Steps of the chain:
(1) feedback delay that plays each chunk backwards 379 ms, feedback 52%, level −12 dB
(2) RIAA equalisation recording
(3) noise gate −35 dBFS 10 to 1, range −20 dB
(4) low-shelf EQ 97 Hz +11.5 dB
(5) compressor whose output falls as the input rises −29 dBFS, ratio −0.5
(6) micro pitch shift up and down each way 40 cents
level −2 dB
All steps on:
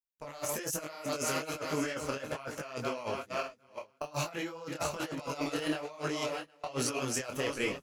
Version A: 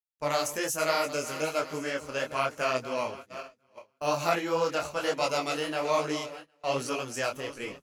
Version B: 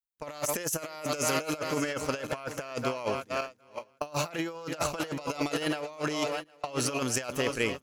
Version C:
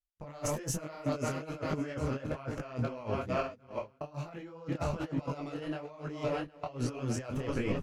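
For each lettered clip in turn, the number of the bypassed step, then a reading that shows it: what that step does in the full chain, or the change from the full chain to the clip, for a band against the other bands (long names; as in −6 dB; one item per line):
5, change in momentary loudness spread +2 LU
6, change in crest factor +2.5 dB
2, 125 Hz band +11.0 dB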